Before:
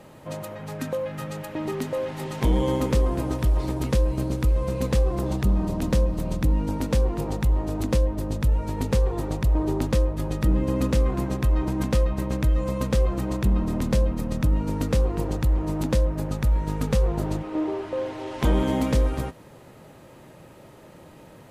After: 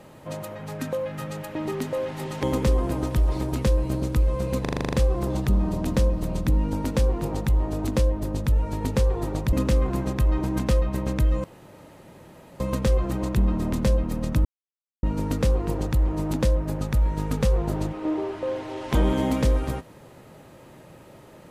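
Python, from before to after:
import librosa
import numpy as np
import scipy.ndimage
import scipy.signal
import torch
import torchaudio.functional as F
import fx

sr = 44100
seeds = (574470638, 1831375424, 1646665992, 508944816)

y = fx.edit(x, sr, fx.cut(start_s=2.43, length_s=0.28),
    fx.stutter(start_s=4.89, slice_s=0.04, count=9),
    fx.cut(start_s=9.49, length_s=1.28),
    fx.insert_room_tone(at_s=12.68, length_s=1.16),
    fx.insert_silence(at_s=14.53, length_s=0.58), tone=tone)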